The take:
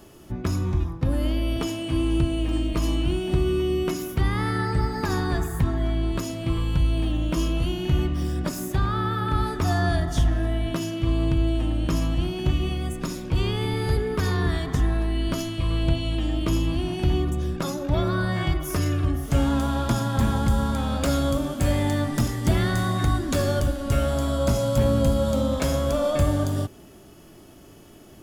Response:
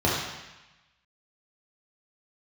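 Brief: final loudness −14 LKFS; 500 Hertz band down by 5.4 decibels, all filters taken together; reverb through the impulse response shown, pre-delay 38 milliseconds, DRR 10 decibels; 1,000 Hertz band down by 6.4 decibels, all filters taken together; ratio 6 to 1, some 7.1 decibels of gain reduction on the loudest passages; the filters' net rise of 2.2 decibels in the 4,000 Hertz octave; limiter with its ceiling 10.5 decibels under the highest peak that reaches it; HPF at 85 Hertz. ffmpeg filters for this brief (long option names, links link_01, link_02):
-filter_complex "[0:a]highpass=85,equalizer=frequency=500:width_type=o:gain=-5.5,equalizer=frequency=1000:width_type=o:gain=-7.5,equalizer=frequency=4000:width_type=o:gain=3.5,acompressor=threshold=-27dB:ratio=6,alimiter=level_in=0.5dB:limit=-24dB:level=0:latency=1,volume=-0.5dB,asplit=2[link_01][link_02];[1:a]atrim=start_sample=2205,adelay=38[link_03];[link_02][link_03]afir=irnorm=-1:irlink=0,volume=-26dB[link_04];[link_01][link_04]amix=inputs=2:normalize=0,volume=17.5dB"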